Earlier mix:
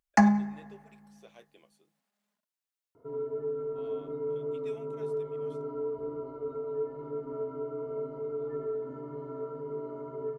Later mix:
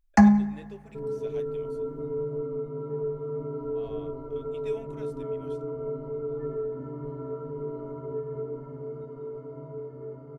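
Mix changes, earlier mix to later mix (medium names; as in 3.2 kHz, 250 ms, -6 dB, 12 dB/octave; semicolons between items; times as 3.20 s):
speech +4.5 dB; second sound: entry -2.10 s; master: remove high-pass 350 Hz 6 dB/octave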